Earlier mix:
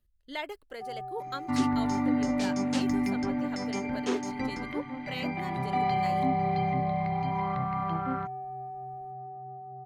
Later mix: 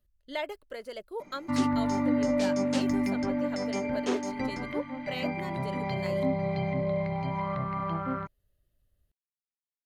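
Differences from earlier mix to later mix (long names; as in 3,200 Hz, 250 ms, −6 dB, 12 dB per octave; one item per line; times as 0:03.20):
first sound: muted
master: add parametric band 590 Hz +8 dB 0.27 octaves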